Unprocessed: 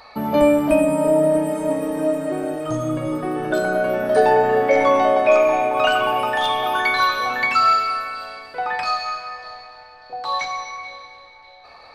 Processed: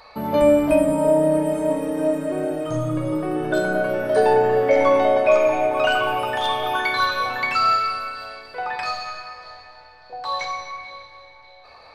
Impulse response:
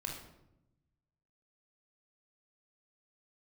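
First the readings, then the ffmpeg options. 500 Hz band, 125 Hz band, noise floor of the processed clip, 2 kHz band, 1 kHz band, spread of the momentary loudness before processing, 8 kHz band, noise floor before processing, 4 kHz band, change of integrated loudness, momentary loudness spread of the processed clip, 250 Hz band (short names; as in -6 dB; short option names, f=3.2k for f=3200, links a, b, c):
-0.5 dB, +1.5 dB, -47 dBFS, -2.0 dB, -3.0 dB, 16 LU, n/a, -45 dBFS, -1.5 dB, -1.5 dB, 15 LU, -1.0 dB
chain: -filter_complex "[0:a]asplit=2[a][b];[1:a]atrim=start_sample=2205[c];[b][c]afir=irnorm=-1:irlink=0,volume=-1dB[d];[a][d]amix=inputs=2:normalize=0,volume=-6dB"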